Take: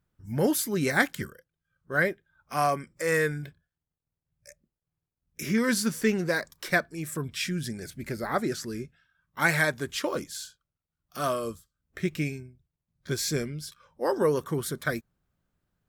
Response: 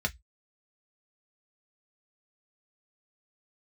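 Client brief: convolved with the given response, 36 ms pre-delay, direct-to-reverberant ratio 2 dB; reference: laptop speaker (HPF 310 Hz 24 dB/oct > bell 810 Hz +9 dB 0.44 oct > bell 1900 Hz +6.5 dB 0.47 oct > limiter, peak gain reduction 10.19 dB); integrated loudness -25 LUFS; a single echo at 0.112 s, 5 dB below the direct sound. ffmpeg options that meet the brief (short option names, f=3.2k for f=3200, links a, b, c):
-filter_complex "[0:a]aecho=1:1:112:0.562,asplit=2[a][b];[1:a]atrim=start_sample=2205,adelay=36[c];[b][c]afir=irnorm=-1:irlink=0,volume=-8.5dB[d];[a][d]amix=inputs=2:normalize=0,highpass=f=310:w=0.5412,highpass=f=310:w=1.3066,equalizer=f=810:t=o:w=0.44:g=9,equalizer=f=1.9k:t=o:w=0.47:g=6.5,volume=2dB,alimiter=limit=-13dB:level=0:latency=1"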